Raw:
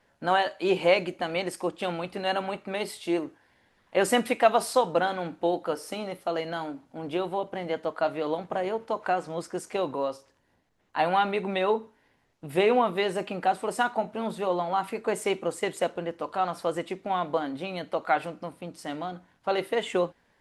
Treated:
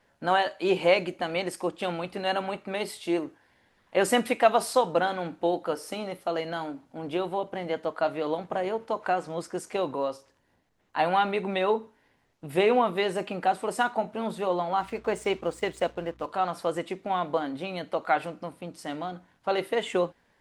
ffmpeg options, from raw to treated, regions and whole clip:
ffmpeg -i in.wav -filter_complex "[0:a]asettb=1/sr,asplit=3[link_01][link_02][link_03];[link_01]atrim=end=14.804[link_04];[link_02]atrim=start=14.8:end=16.26,asetpts=PTS-STARTPTS,afade=type=in:duration=0.004:curve=qsin,afade=type=out:start_time=1.456:duration=0.004:curve=qsin,lowpass=7500,aeval=exprs='sgn(val(0))*max(abs(val(0))-0.00237,0)':channel_layout=same,aeval=exprs='val(0)+0.00178*(sin(2*PI*60*n/s)+sin(2*PI*2*60*n/s)/2+sin(2*PI*3*60*n/s)/3+sin(2*PI*4*60*n/s)/4+sin(2*PI*5*60*n/s)/5)':channel_layout=same[link_05];[link_03]atrim=start=16.256[link_06];[link_04][link_05]acrossfade=duration=0.004:curve1=hsin:curve2=qsin[link_07];[link_07][link_06]acrossfade=duration=0.004:curve1=qsin:curve2=hsin" out.wav

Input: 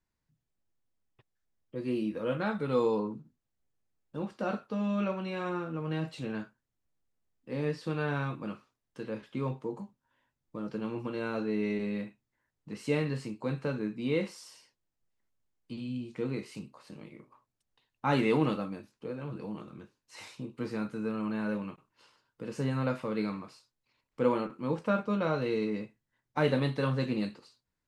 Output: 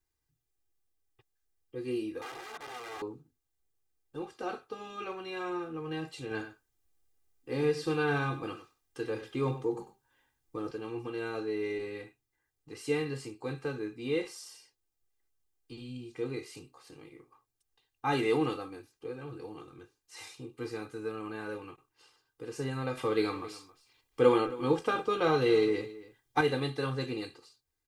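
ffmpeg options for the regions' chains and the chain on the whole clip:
ffmpeg -i in.wav -filter_complex "[0:a]asettb=1/sr,asplit=3[link_01][link_02][link_03];[link_01]atrim=end=2.214[link_04];[link_02]atrim=start=2.21:end=3.02,asetpts=PTS-STARTPTS,afade=type=in:duration=0.004:curve=qsin,afade=type=out:start_time=0.806:duration=0.004:curve=qsin,acompressor=threshold=-33dB:ratio=6:attack=3.2:release=140:knee=1:detection=peak,aeval=exprs='(mod(50.1*val(0)+1,2)-1)/50.1':channel_layout=same,bandpass=frequency=910:width_type=q:width=0.54[link_05];[link_03]atrim=start=3.016[link_06];[link_04][link_05]acrossfade=duration=0.004:curve1=hsin:curve2=qsin[link_07];[link_07][link_06]acrossfade=duration=0.004:curve1=qsin:curve2=hsin,asettb=1/sr,asplit=3[link_08][link_09][link_10];[link_08]atrim=end=6.314[link_11];[link_09]atrim=start=6.31:end=10.71,asetpts=PTS-STARTPTS,afade=type=in:duration=0.004:curve=qsin,afade=type=out:start_time=4.396:duration=0.004:curve=qsin,acontrast=28,aecho=1:1:96:0.237,atrim=end_sample=194040[link_12];[link_10]atrim=start=10.706[link_13];[link_11][link_12]acrossfade=duration=0.004:curve1=hsin:curve2=qsin[link_14];[link_14][link_13]acrossfade=duration=0.004:curve1=qsin:curve2=hsin,asettb=1/sr,asplit=3[link_15][link_16][link_17];[link_15]atrim=end=22.974[link_18];[link_16]atrim=start=22.97:end=26.41,asetpts=PTS-STARTPTS,afade=type=in:duration=0.004:curve=qsin,afade=type=out:start_time=3.436:duration=0.004:curve=qsin,acontrast=68,equalizer=frequency=3300:width=7.7:gain=7,aecho=1:1:270:0.126,atrim=end_sample=151704[link_19];[link_17]atrim=start=26.406[link_20];[link_18][link_19]acrossfade=duration=0.004:curve1=hsin:curve2=qsin[link_21];[link_21][link_20]acrossfade=duration=0.004:curve1=qsin:curve2=hsin,highshelf=frequency=5800:gain=9,aecho=1:1:2.5:0.9,volume=-4.5dB" out.wav

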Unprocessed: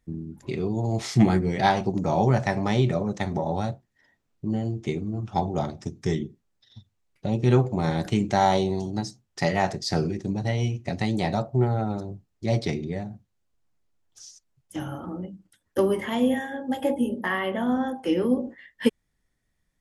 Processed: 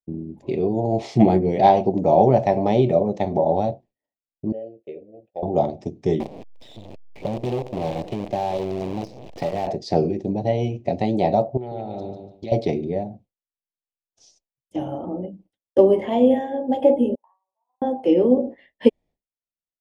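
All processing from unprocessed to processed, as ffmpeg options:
ffmpeg -i in.wav -filter_complex "[0:a]asettb=1/sr,asplit=3[link_01][link_02][link_03];[link_01]atrim=end=4.524[link_04];[link_02]atrim=start=4.52:end=5.43,asetpts=PTS-STARTPTS,afade=type=in:duration=0.004:curve=qsin,afade=type=out:start_time=0.906:duration=0.004:curve=qsin,agate=range=-13dB:threshold=-42dB:ratio=16:release=100:detection=peak,asplit=3[link_05][link_06][link_07];[link_05]bandpass=frequency=530:width_type=q:width=8,volume=0dB[link_08];[link_06]bandpass=frequency=1840:width_type=q:width=8,volume=-6dB[link_09];[link_07]bandpass=frequency=2480:width_type=q:width=8,volume=-9dB[link_10];[link_08][link_09][link_10]amix=inputs=3:normalize=0,equalizer=frequency=68:width_type=o:width=0.97:gain=8.5[link_11];[link_03]atrim=start=5.426[link_12];[link_04][link_11]acrossfade=duration=0.004:curve1=hsin:curve2=qsin[link_13];[link_13][link_12]acrossfade=duration=0.004:curve1=qsin:curve2=hsin,asettb=1/sr,asplit=3[link_14][link_15][link_16];[link_14]atrim=end=6.204[link_17];[link_15]atrim=start=6.2:end=9.67,asetpts=PTS-STARTPTS,afade=type=in:duration=0.004:curve=qsin,afade=type=out:start_time=3.466:duration=0.004:curve=qsin,aeval=exprs='val(0)+0.5*0.0224*sgn(val(0))':channel_layout=same,acrossover=split=100|5400[link_18][link_19][link_20];[link_18]acompressor=threshold=-37dB:ratio=4[link_21];[link_19]acompressor=threshold=-32dB:ratio=4[link_22];[link_20]acompressor=threshold=-54dB:ratio=4[link_23];[link_21][link_22][link_23]amix=inputs=3:normalize=0,acrusher=bits=6:dc=4:mix=0:aa=0.000001[link_24];[link_16]atrim=start=9.666[link_25];[link_17][link_24]acrossfade=duration=0.004:curve1=hsin:curve2=qsin[link_26];[link_26][link_25]acrossfade=duration=0.004:curve1=qsin:curve2=hsin,asettb=1/sr,asplit=3[link_27][link_28][link_29];[link_27]atrim=end=11.574[link_30];[link_28]atrim=start=11.57:end=12.52,asetpts=PTS-STARTPTS,afade=type=in:duration=0.004:curve=qsin,afade=type=out:start_time=0.946:duration=0.004:curve=qsin,equalizer=frequency=3300:width_type=o:width=1.5:gain=14,acompressor=threshold=-32dB:ratio=12:attack=3.2:release=140:knee=1:detection=peak,aecho=1:1:147|294|441|588:0.473|0.147|0.0455|0.0141,atrim=end_sample=41895[link_31];[link_29]atrim=start=12.516[link_32];[link_30][link_31]acrossfade=duration=0.004:curve1=hsin:curve2=qsin[link_33];[link_33][link_32]acrossfade=duration=0.004:curve1=qsin:curve2=hsin,asettb=1/sr,asplit=3[link_34][link_35][link_36];[link_34]atrim=end=17.154[link_37];[link_35]atrim=start=17.15:end=17.82,asetpts=PTS-STARTPTS,afade=type=in:duration=0.004:curve=qsin,afade=type=out:start_time=0.666:duration=0.004:curve=qsin,agate=range=-13dB:threshold=-22dB:ratio=16:release=100:detection=peak,asuperpass=centerf=1000:order=4:qfactor=4.3,acompressor=threshold=-57dB:ratio=5:attack=3.2:release=140:knee=1:detection=peak[link_38];[link_36]atrim=start=17.816[link_39];[link_37][link_38]acrossfade=duration=0.004:curve1=hsin:curve2=qsin[link_40];[link_40][link_39]acrossfade=duration=0.004:curve1=qsin:curve2=hsin,agate=range=-33dB:threshold=-46dB:ratio=3:detection=peak,firequalizer=gain_entry='entry(120,0);entry(260,6);entry(630,13);entry(1400,-12);entry(2400,0);entry(7200,-11);entry(12000,-18)':delay=0.05:min_phase=1,volume=-1dB" out.wav

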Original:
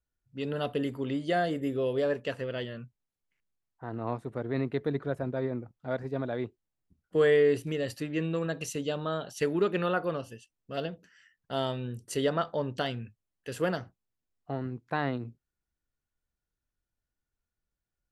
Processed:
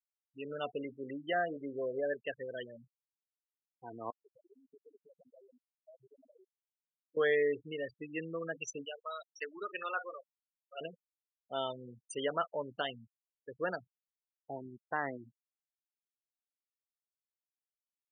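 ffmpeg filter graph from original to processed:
ffmpeg -i in.wav -filter_complex "[0:a]asettb=1/sr,asplit=3[link_01][link_02][link_03];[link_01]atrim=end=4.104[link_04];[link_02]atrim=start=4.1:end=7.17,asetpts=PTS-STARTPTS,afade=type=in:duration=0.004:curve=qsin,afade=type=out:start_time=3.066:duration=0.004:curve=qsin,aeval=exprs='max(val(0),0)':channel_layout=same,acompressor=threshold=-39dB:ratio=16:attack=3.2:release=140:knee=1:detection=peak,highpass=100[link_05];[link_03]atrim=start=7.166[link_06];[link_04][link_05]acrossfade=duration=0.004:curve1=hsin:curve2=qsin[link_07];[link_07][link_06]acrossfade=duration=0.004:curve1=qsin:curve2=hsin,asettb=1/sr,asplit=3[link_08][link_09][link_10];[link_08]atrim=end=8.854[link_11];[link_09]atrim=start=8.85:end=10.81,asetpts=PTS-STARTPTS,afade=type=in:duration=0.004:curve=qsin,afade=type=out:start_time=1.956:duration=0.004:curve=qsin,highpass=frequency=1100:poles=1,asplit=2[link_12][link_13];[link_13]adelay=43,volume=-12dB[link_14];[link_12][link_14]amix=inputs=2:normalize=0,atrim=end_sample=86436[link_15];[link_10]atrim=start=10.806[link_16];[link_11][link_15]acrossfade=duration=0.004:curve1=hsin:curve2=qsin[link_17];[link_17][link_16]acrossfade=duration=0.004:curve1=qsin:curve2=hsin,afftfilt=real='re*gte(hypot(re,im),0.0355)':imag='im*gte(hypot(re,im),0.0355)':win_size=1024:overlap=0.75,highpass=frequency=940:poles=1" out.wav

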